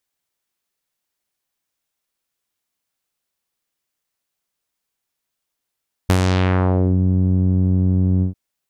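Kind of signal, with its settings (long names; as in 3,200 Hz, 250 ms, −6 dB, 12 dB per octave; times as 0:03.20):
subtractive voice saw F#2 12 dB per octave, low-pass 230 Hz, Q 1.3, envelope 6 octaves, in 0.88 s, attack 9.5 ms, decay 0.07 s, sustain −4 dB, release 0.12 s, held 2.13 s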